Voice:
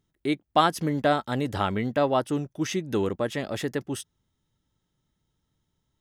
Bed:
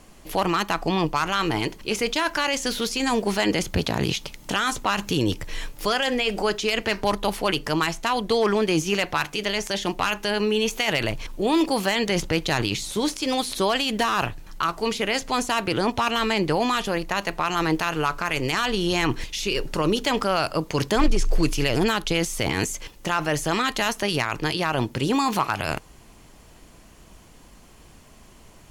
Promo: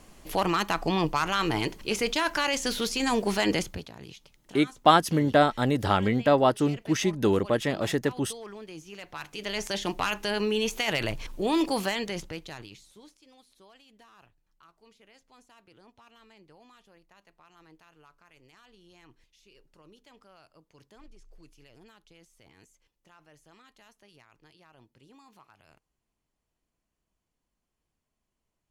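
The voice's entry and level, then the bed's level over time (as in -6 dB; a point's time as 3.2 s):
4.30 s, +2.5 dB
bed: 3.58 s -3 dB
3.91 s -21.5 dB
8.92 s -21.5 dB
9.62 s -4.5 dB
11.82 s -4.5 dB
13.31 s -34 dB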